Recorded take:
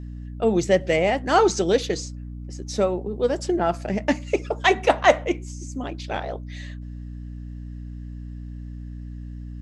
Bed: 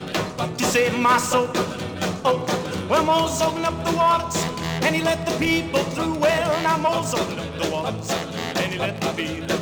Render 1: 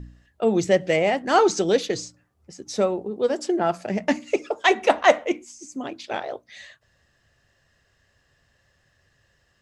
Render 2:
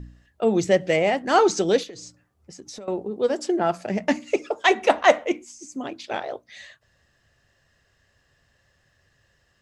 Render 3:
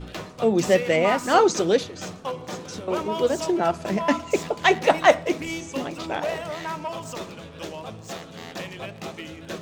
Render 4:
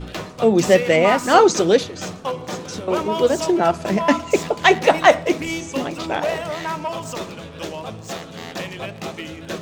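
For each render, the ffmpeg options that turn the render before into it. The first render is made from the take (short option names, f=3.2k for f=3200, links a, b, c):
-af "bandreject=f=60:t=h:w=4,bandreject=f=120:t=h:w=4,bandreject=f=180:t=h:w=4,bandreject=f=240:t=h:w=4,bandreject=f=300:t=h:w=4"
-filter_complex "[0:a]asettb=1/sr,asplit=3[a][b][c];[a]atrim=end=1.834[d];[b]atrim=start=1.83:end=2.88,asetpts=PTS-STARTPTS,afade=t=in:d=0.004:c=qsin,afade=t=out:st=1.046:d=0.004:c=qsin,acompressor=threshold=-35dB:ratio=20:attack=3.2:release=140:knee=1:detection=peak[e];[c]atrim=start=2.876[f];[d][e]acrossfade=d=0.004:c1=hsin:c2=qsin[g];[g][f]acrossfade=d=0.004:c1=qsin:c2=hsin"
-filter_complex "[1:a]volume=-11dB[a];[0:a][a]amix=inputs=2:normalize=0"
-af "volume=5dB,alimiter=limit=-1dB:level=0:latency=1"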